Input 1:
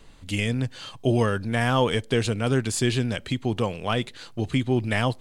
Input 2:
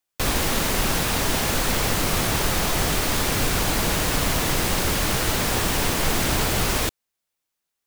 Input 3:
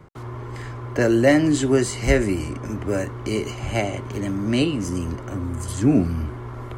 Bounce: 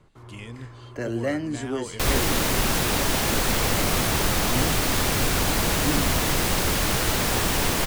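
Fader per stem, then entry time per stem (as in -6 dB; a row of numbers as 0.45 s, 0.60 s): -14.5 dB, -0.5 dB, -11.0 dB; 0.00 s, 1.80 s, 0.00 s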